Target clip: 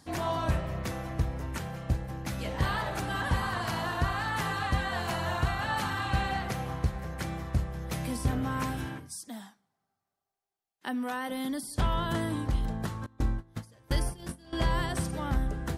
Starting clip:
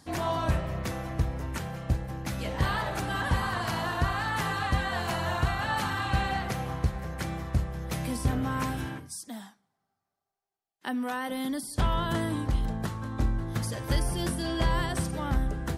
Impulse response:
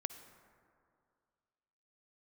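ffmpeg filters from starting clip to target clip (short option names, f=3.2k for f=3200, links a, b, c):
-filter_complex "[0:a]asettb=1/sr,asplit=3[a][b][c];[a]atrim=end=13.064[d];[b]atrim=start=13.06:end=14.53,asetpts=PTS-STARTPTS,afade=t=in:d=0.004:c=qsin,afade=t=out:st=1.466:d=0.004:c=qsin,agate=range=-22dB:threshold=-27dB:ratio=16:detection=peak[e];[c]atrim=start=14.526[f];[d][e]acrossfade=d=0.004:c1=hsin:c2=qsin[g];[g][f]acrossfade=d=0.004:c1=qsin:c2=hsin,volume=-1.5dB"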